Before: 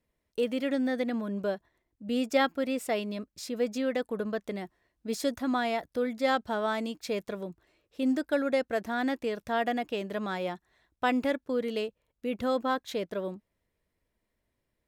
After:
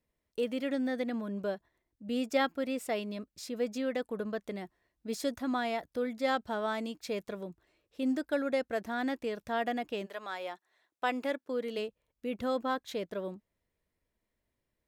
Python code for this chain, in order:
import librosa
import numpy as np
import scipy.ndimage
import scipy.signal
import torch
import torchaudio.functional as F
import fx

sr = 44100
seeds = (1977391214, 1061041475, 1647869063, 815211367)

y = fx.highpass(x, sr, hz=fx.line((10.05, 690.0), (11.77, 210.0)), slope=12, at=(10.05, 11.77), fade=0.02)
y = y * 10.0 ** (-3.5 / 20.0)